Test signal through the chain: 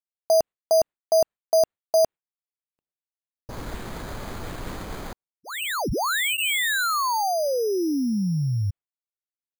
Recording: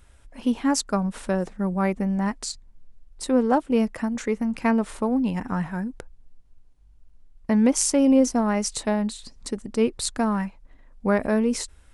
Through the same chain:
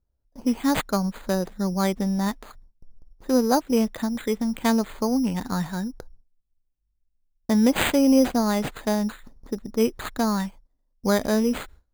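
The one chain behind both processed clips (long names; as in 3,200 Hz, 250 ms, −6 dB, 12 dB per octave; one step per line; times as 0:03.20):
notch filter 2,800 Hz, Q 21
noise gate with hold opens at −38 dBFS
low-pass that shuts in the quiet parts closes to 690 Hz, open at −18.5 dBFS
bad sample-rate conversion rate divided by 8×, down none, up hold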